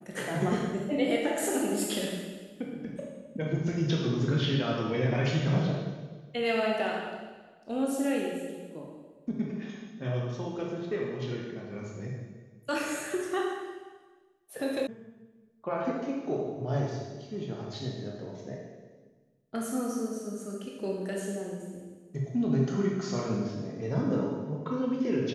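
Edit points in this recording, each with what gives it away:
0:14.87: cut off before it has died away

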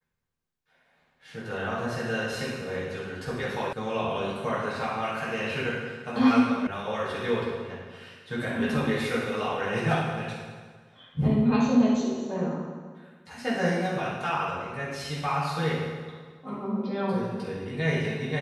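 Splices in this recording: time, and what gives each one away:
0:03.73: cut off before it has died away
0:06.67: cut off before it has died away

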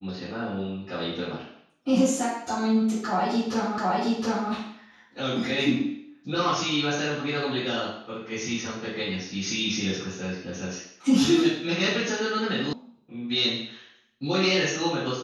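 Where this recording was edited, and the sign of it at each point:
0:03.78: the same again, the last 0.72 s
0:12.73: cut off before it has died away

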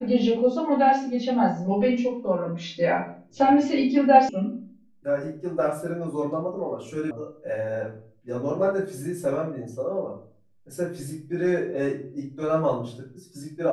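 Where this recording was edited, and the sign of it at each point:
0:04.29: cut off before it has died away
0:07.11: cut off before it has died away

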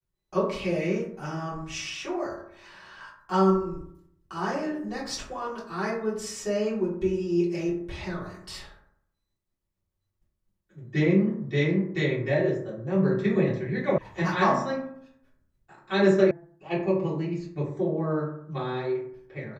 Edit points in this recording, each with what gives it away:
0:13.98: cut off before it has died away
0:16.31: cut off before it has died away

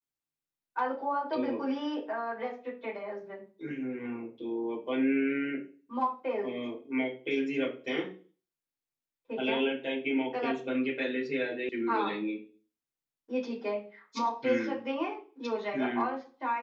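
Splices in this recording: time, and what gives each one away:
0:11.69: cut off before it has died away

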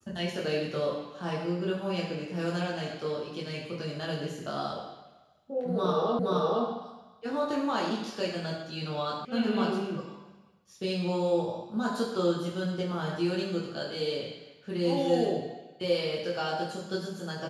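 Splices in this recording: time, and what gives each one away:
0:06.19: the same again, the last 0.47 s
0:09.25: cut off before it has died away

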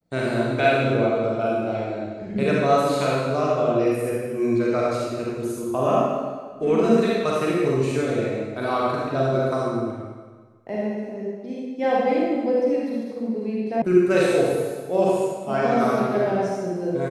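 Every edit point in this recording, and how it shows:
0:13.82: cut off before it has died away

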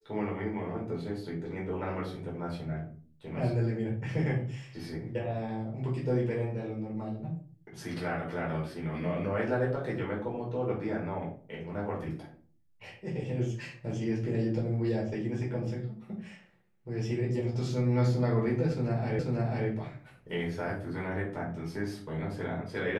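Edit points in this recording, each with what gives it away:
0:19.19: the same again, the last 0.49 s

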